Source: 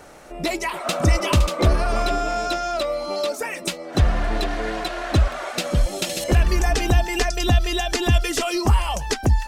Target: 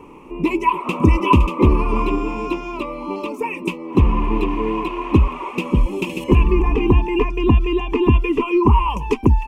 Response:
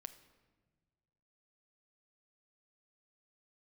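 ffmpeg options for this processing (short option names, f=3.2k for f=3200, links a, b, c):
-filter_complex "[0:a]asettb=1/sr,asplit=3[a][b][c];[a]atrim=end=6.444[d];[b]atrim=start=6.44:end=8.9,asetpts=PTS-STARTPTS,afade=t=in:d=0.004:c=qsin,afade=t=out:st=2.456:d=0.004:c=qsin,acrossover=split=2800[e][f];[f]acompressor=threshold=-43dB:ratio=4:attack=1:release=60[g];[e][g]amix=inputs=2:normalize=0[h];[c]atrim=start=8.896[i];[d][h]acrossfade=d=0.004:c1=hsin:c2=qsin[j];[j][i]acrossfade=d=0.004:c1=qsin:c2=hsin,firequalizer=gain_entry='entry(120,0);entry(240,8);entry(430,5);entry(660,-19);entry(1000,12);entry(1500,-24);entry(2500,5);entry(3900,-21);entry(6000,-18);entry(13000,-14)':delay=0.05:min_phase=1,volume=2.5dB"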